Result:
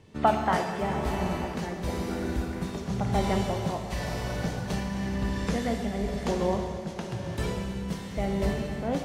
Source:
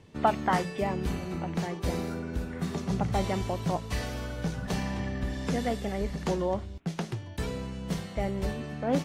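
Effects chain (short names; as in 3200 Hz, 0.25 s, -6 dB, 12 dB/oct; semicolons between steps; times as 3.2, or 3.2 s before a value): plate-style reverb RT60 4.1 s, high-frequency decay 0.95×, DRR 1.5 dB; tremolo triangle 0.97 Hz, depth 45%; gain +1.5 dB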